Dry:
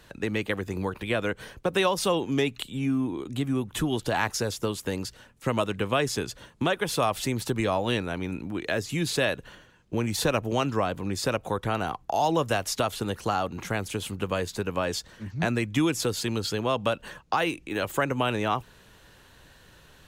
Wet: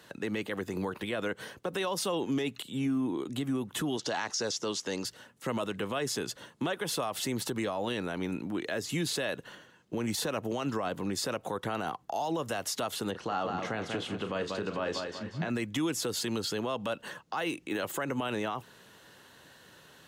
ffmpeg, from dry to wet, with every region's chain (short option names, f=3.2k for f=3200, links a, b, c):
-filter_complex "[0:a]asettb=1/sr,asplit=3[a][b][c];[a]atrim=end=3.974[d];[b]atrim=start=3.97:end=5.05,asetpts=PTS-STARTPTS,afade=t=in:d=0.004:c=qsin,afade=t=out:st=1.076:d=0.004:c=qsin,lowpass=f=5.9k:t=q:w=3,lowshelf=f=120:g=-10.5[e];[c]atrim=start=5.046[f];[d][e]acrossfade=d=0.004:c1=hsin:c2=qsin[g];[g][f]acrossfade=d=0.004:c1=qsin:c2=hsin,asettb=1/sr,asplit=3[h][i][j];[h]atrim=end=13.114[k];[i]atrim=start=13.11:end=15.5,asetpts=PTS-STARTPTS,afade=t=in:d=0.004:c=qsin,afade=t=out:st=2.386:d=0.004:c=qsin,lowpass=4.1k,asplit=2[l][m];[m]adelay=36,volume=-12dB[n];[l][n]amix=inputs=2:normalize=0,atrim=end_sample=105399,aecho=1:1:188|376|564|752:0.355|0.131|0.0486|0.018,atrim=end_sample=105399[o];[j]atrim=start=15.496[p];[k][o]acrossfade=d=0.004:c1=hsin:c2=qsin[q];[q][p]acrossfade=d=0.004:c1=qsin:c2=hsin,highpass=160,bandreject=f=2.4k:w=13,alimiter=limit=-23.5dB:level=0:latency=1:release=53"